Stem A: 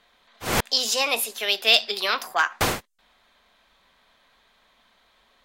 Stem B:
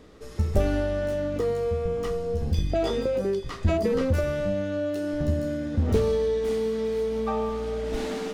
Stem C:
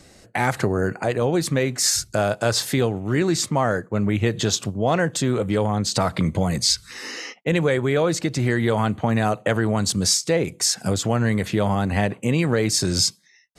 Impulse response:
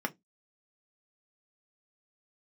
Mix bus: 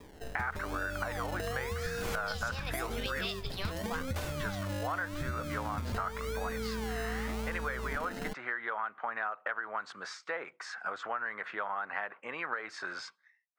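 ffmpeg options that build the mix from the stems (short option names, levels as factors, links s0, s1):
-filter_complex "[0:a]adelay=1550,volume=0.2[s0];[1:a]asubboost=boost=5.5:cutoff=150,acrossover=split=150|450[s1][s2][s3];[s1]acompressor=threshold=0.0178:ratio=4[s4];[s2]acompressor=threshold=0.0158:ratio=4[s5];[s3]acompressor=threshold=0.0112:ratio=4[s6];[s4][s5][s6]amix=inputs=3:normalize=0,acrusher=samples=30:mix=1:aa=0.000001:lfo=1:lforange=18:lforate=0.89,volume=0.794[s7];[2:a]highpass=1100,agate=range=0.0224:threshold=0.00631:ratio=3:detection=peak,lowpass=f=1400:t=q:w=2.9,volume=0.668,asplit=3[s8][s9][s10];[s8]atrim=end=3.27,asetpts=PTS-STARTPTS,afade=t=out:st=3.266:d=0.004:c=hsin[s11];[s9]atrim=start=3.27:end=4.35,asetpts=PTS-STARTPTS,volume=0[s12];[s10]atrim=start=4.35,asetpts=PTS-STARTPTS,afade=t=in:d=0.004:c=hsin[s13];[s11][s12][s13]concat=n=3:v=0:a=1[s14];[s0][s7][s14]amix=inputs=3:normalize=0,acompressor=threshold=0.0282:ratio=10"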